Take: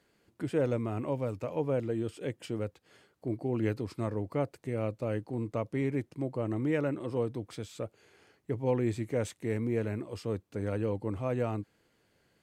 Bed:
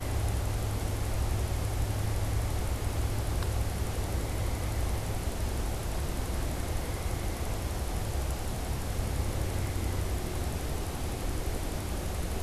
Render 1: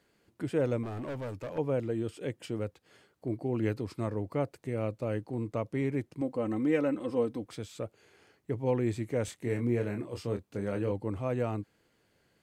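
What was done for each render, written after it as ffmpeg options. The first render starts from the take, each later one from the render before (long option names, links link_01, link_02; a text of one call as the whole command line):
ffmpeg -i in.wav -filter_complex "[0:a]asettb=1/sr,asplit=3[link_01][link_02][link_03];[link_01]atrim=end=0.834[link_04];[link_02]atrim=start=0.83:end=1.58,asetpts=PTS-STARTPTS,afade=type=in:duration=0.004:curve=qsin,afade=type=out:start_time=0.746:duration=0.004:curve=qsin,asoftclip=type=hard:threshold=-34dB[link_05];[link_03]atrim=start=1.576[link_06];[link_04][link_05]acrossfade=duration=0.004:curve1=hsin:curve2=qsin[link_07];[link_07][link_06]acrossfade=duration=0.004:curve1=qsin:curve2=hsin,asettb=1/sr,asplit=3[link_08][link_09][link_10];[link_08]atrim=end=6.214[link_11];[link_09]atrim=start=6.21:end=7.45,asetpts=PTS-STARTPTS,afade=type=in:duration=0.004:curve=qsin,afade=type=out:start_time=1.236:duration=0.004:curve=qsin,aecho=1:1:3.9:0.65,atrim=end_sample=54684[link_12];[link_10]atrim=start=7.446[link_13];[link_11][link_12]acrossfade=duration=0.004:curve1=hsin:curve2=qsin[link_14];[link_14][link_13]acrossfade=duration=0.004:curve1=qsin:curve2=hsin,asettb=1/sr,asplit=3[link_15][link_16][link_17];[link_15]atrim=end=9.254[link_18];[link_16]atrim=start=9.25:end=10.92,asetpts=PTS-STARTPTS,afade=type=in:duration=0.004:curve=qsin,afade=type=out:start_time=1.666:duration=0.004:curve=qsin,asplit=2[link_19][link_20];[link_20]adelay=25,volume=-6dB[link_21];[link_19][link_21]amix=inputs=2:normalize=0,atrim=end_sample=73647[link_22];[link_17]atrim=start=10.916[link_23];[link_18][link_22]acrossfade=duration=0.004:curve1=hsin:curve2=qsin[link_24];[link_24][link_23]acrossfade=duration=0.004:curve1=qsin:curve2=hsin" out.wav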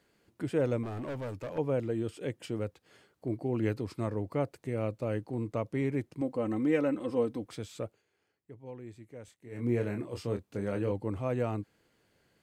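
ffmpeg -i in.wav -filter_complex "[0:a]asplit=3[link_01][link_02][link_03];[link_01]atrim=end=8.03,asetpts=PTS-STARTPTS,afade=type=out:start_time=7.85:duration=0.18:silence=0.158489[link_04];[link_02]atrim=start=8.03:end=9.51,asetpts=PTS-STARTPTS,volume=-16dB[link_05];[link_03]atrim=start=9.51,asetpts=PTS-STARTPTS,afade=type=in:duration=0.18:silence=0.158489[link_06];[link_04][link_05][link_06]concat=n=3:v=0:a=1" out.wav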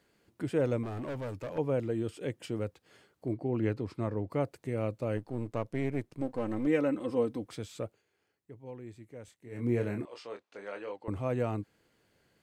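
ffmpeg -i in.wav -filter_complex "[0:a]asettb=1/sr,asplit=3[link_01][link_02][link_03];[link_01]atrim=end=3.334[link_04];[link_02]atrim=start=3.33:end=4.3,asetpts=PTS-STARTPTS,afade=type=in:duration=0.004:curve=qsin,afade=type=out:start_time=0.966:duration=0.004:curve=qsin,aemphasis=mode=reproduction:type=50kf[link_05];[link_03]atrim=start=4.296[link_06];[link_04][link_05]acrossfade=duration=0.004:curve1=hsin:curve2=qsin[link_07];[link_07][link_06]acrossfade=duration=0.004:curve1=qsin:curve2=hsin,asettb=1/sr,asplit=3[link_08][link_09][link_10];[link_08]atrim=end=5.174[link_11];[link_09]atrim=start=5.17:end=6.67,asetpts=PTS-STARTPTS,afade=type=in:duration=0.004:curve=qsin,afade=type=out:start_time=1.496:duration=0.004:curve=qsin,aeval=exprs='if(lt(val(0),0),0.447*val(0),val(0))':channel_layout=same[link_12];[link_10]atrim=start=6.666[link_13];[link_11][link_12]acrossfade=duration=0.004:curve1=hsin:curve2=qsin[link_14];[link_14][link_13]acrossfade=duration=0.004:curve1=qsin:curve2=hsin,asettb=1/sr,asplit=3[link_15][link_16][link_17];[link_15]atrim=end=10.054[link_18];[link_16]atrim=start=10.05:end=11.08,asetpts=PTS-STARTPTS,afade=type=in:duration=0.004:curve=qsin,afade=type=out:start_time=1.026:duration=0.004:curve=qsin,highpass=680,lowpass=4900[link_19];[link_17]atrim=start=11.076[link_20];[link_18][link_19]acrossfade=duration=0.004:curve1=hsin:curve2=qsin[link_21];[link_21][link_20]acrossfade=duration=0.004:curve1=qsin:curve2=hsin" out.wav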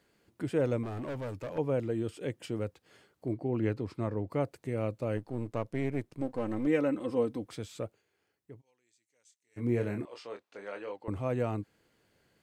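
ffmpeg -i in.wav -filter_complex "[0:a]asplit=3[link_01][link_02][link_03];[link_01]afade=type=out:start_time=8.6:duration=0.02[link_04];[link_02]bandpass=frequency=6300:width_type=q:width=2.1,afade=type=in:start_time=8.6:duration=0.02,afade=type=out:start_time=9.56:duration=0.02[link_05];[link_03]afade=type=in:start_time=9.56:duration=0.02[link_06];[link_04][link_05][link_06]amix=inputs=3:normalize=0" out.wav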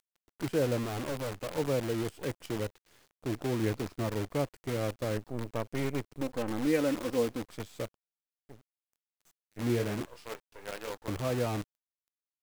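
ffmpeg -i in.wav -af "acrusher=bits=7:dc=4:mix=0:aa=0.000001" out.wav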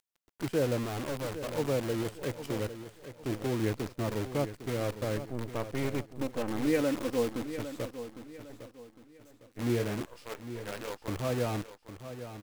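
ffmpeg -i in.wav -af "aecho=1:1:806|1612|2418|3224:0.266|0.0905|0.0308|0.0105" out.wav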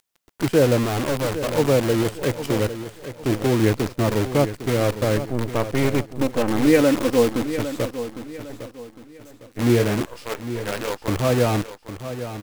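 ffmpeg -i in.wav -af "volume=12dB" out.wav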